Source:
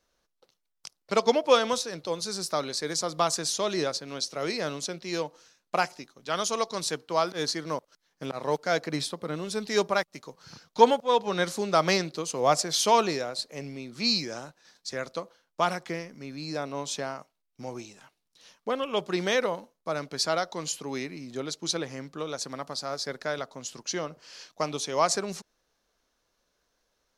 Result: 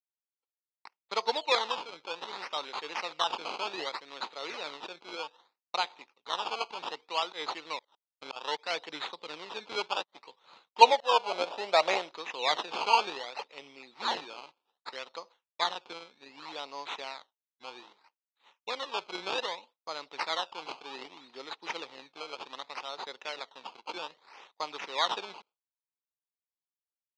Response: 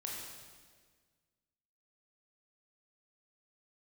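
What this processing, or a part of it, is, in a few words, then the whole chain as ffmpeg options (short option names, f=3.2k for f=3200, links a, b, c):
circuit-bent sampling toy: -filter_complex "[0:a]acrusher=samples=16:mix=1:aa=0.000001:lfo=1:lforange=16:lforate=0.64,highpass=580,equalizer=f=630:t=q:w=4:g=-6,equalizer=f=900:t=q:w=4:g=6,equalizer=f=1.6k:t=q:w=4:g=-6,equalizer=f=2.6k:t=q:w=4:g=4,equalizer=f=3.8k:t=q:w=4:g=9,lowpass=f=5.4k:w=0.5412,lowpass=f=5.4k:w=1.3066,agate=range=-33dB:threshold=-49dB:ratio=3:detection=peak,asettb=1/sr,asplit=3[a][b][c];[a]atrim=end=10.814[d];[b]atrim=start=10.81:end=12.11,asetpts=PTS-STARTPTS,afade=t=in:d=0.004:c=qsin,afade=t=out:st=1.296:d=0.004:c=qsin,equalizer=f=100:t=o:w=0.67:g=-11,equalizer=f=630:t=o:w=0.67:g=12,equalizer=f=10k:t=o:w=0.67:g=4[e];[c]atrim=start=12.106[f];[d][e]acrossfade=d=0.004:c1=hsin:c2=qsin[g];[g][f]acrossfade=d=0.004:c1=qsin:c2=hsin,volume=-4.5dB"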